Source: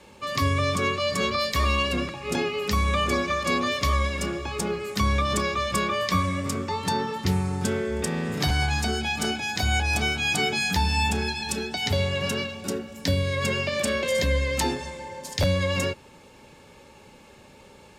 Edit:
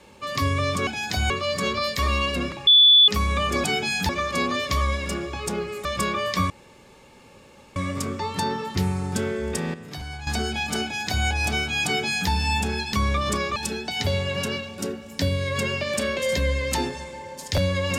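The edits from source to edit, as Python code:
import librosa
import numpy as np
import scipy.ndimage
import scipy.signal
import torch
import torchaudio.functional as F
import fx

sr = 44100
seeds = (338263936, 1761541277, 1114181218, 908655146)

y = fx.edit(x, sr, fx.bleep(start_s=2.24, length_s=0.41, hz=3460.0, db=-10.0),
    fx.move(start_s=4.97, length_s=0.63, to_s=11.42),
    fx.insert_room_tone(at_s=6.25, length_s=1.26),
    fx.clip_gain(start_s=8.23, length_s=0.53, db=-11.5),
    fx.duplicate(start_s=9.33, length_s=0.43, to_s=0.87),
    fx.duplicate(start_s=10.34, length_s=0.45, to_s=3.21), tone=tone)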